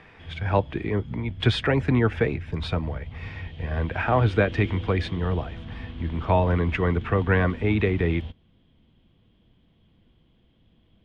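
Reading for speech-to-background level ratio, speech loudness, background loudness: 13.0 dB, −25.0 LKFS, −38.0 LKFS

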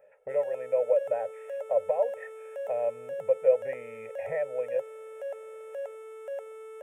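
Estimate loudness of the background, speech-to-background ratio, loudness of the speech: −40.5 LKFS, 11.0 dB, −29.5 LKFS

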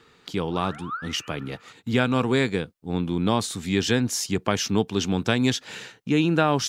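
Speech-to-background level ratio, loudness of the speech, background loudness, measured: 13.0 dB, −25.0 LKFS, −38.0 LKFS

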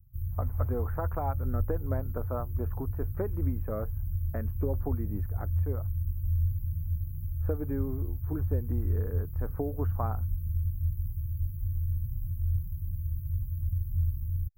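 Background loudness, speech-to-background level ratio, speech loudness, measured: −33.0 LKFS, −5.0 dB, −38.0 LKFS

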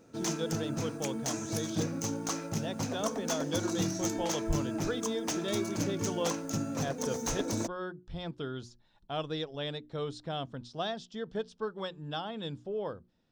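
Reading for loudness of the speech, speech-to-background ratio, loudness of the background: −38.0 LKFS, −3.5 dB, −34.5 LKFS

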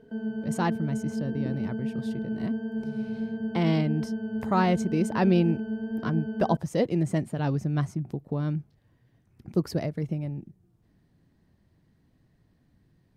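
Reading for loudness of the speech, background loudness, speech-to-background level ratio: −29.0 LKFS, −32.5 LKFS, 3.5 dB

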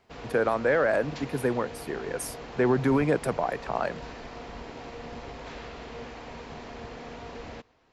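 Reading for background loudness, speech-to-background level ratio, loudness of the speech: −41.5 LKFS, 14.0 dB, −27.5 LKFS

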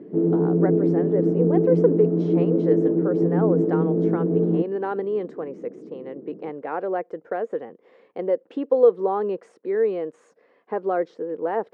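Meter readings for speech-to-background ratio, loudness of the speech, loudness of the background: −4.5 dB, −26.0 LKFS, −21.5 LKFS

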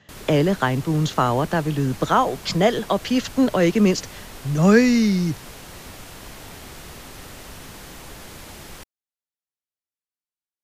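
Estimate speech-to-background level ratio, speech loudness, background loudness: 19.0 dB, −20.0 LKFS, −39.0 LKFS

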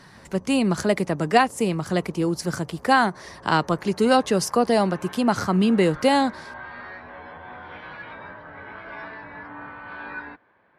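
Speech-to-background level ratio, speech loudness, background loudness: 19.0 dB, −22.0 LKFS, −41.0 LKFS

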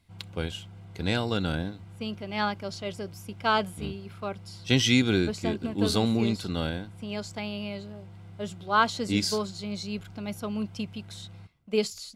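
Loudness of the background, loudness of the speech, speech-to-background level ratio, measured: −47.5 LKFS, −29.0 LKFS, 18.5 dB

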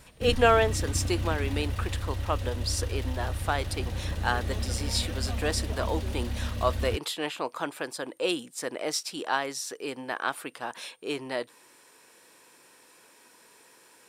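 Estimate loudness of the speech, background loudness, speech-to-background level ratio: −31.0 LKFS, −33.0 LKFS, 2.0 dB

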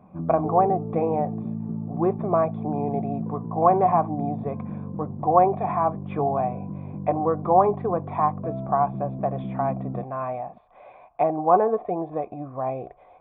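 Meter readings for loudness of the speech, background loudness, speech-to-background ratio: −24.5 LKFS, −33.0 LKFS, 8.5 dB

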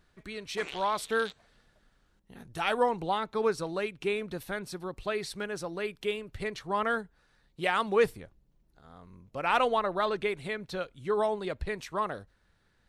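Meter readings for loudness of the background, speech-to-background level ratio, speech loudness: −44.5 LKFS, 13.0 dB, −31.5 LKFS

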